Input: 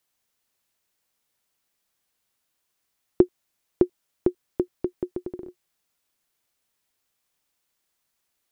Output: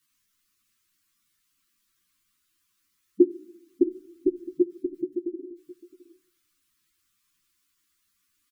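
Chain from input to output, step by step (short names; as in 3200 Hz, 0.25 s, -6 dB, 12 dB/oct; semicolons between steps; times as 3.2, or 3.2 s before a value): spectral gate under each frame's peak -10 dB strong; elliptic band-stop 350–1100 Hz; echo 0.663 s -18 dB; shoebox room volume 2000 m³, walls furnished, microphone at 0.37 m; ensemble effect; gain +8.5 dB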